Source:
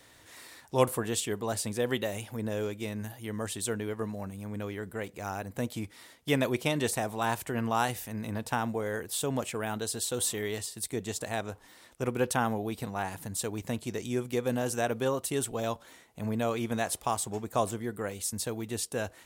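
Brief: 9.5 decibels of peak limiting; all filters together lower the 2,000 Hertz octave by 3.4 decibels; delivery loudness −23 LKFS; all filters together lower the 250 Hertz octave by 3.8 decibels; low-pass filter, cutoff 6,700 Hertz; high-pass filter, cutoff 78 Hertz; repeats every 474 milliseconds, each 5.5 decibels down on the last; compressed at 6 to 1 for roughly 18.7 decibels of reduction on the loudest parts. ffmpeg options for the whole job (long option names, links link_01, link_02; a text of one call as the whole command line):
ffmpeg -i in.wav -af "highpass=78,lowpass=6700,equalizer=frequency=250:width_type=o:gain=-4.5,equalizer=frequency=2000:width_type=o:gain=-4.5,acompressor=threshold=-40dB:ratio=6,alimiter=level_in=10dB:limit=-24dB:level=0:latency=1,volume=-10dB,aecho=1:1:474|948|1422|1896|2370|2844|3318:0.531|0.281|0.149|0.079|0.0419|0.0222|0.0118,volume=21.5dB" out.wav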